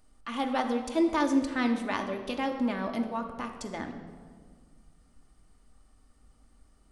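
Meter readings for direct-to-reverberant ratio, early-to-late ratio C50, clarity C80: 3.0 dB, 8.0 dB, 9.5 dB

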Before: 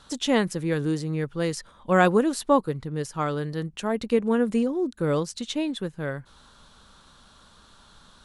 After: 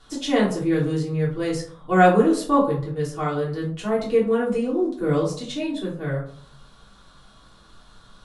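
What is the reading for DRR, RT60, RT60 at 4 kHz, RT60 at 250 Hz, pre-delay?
−7.5 dB, 0.55 s, 0.30 s, 0.60 s, 3 ms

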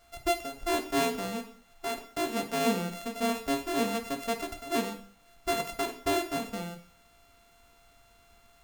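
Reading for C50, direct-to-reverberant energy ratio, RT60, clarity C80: 9.5 dB, 4.5 dB, 0.50 s, 14.0 dB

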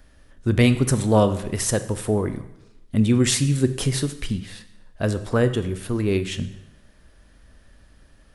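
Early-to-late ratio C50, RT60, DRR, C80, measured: 13.0 dB, 0.90 s, 10.5 dB, 15.5 dB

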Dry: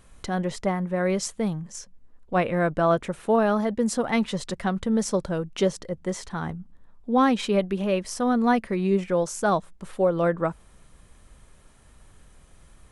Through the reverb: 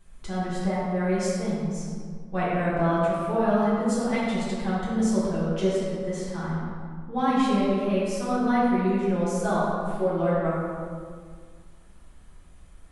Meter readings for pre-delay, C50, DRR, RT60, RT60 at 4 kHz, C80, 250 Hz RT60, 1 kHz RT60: 3 ms, −2.5 dB, −9.0 dB, 1.9 s, 1.1 s, −0.5 dB, 2.3 s, 1.8 s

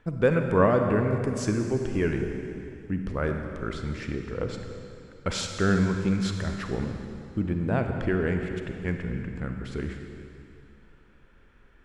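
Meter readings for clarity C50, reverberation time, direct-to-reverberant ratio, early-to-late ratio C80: 4.5 dB, 2.6 s, 4.0 dB, 5.5 dB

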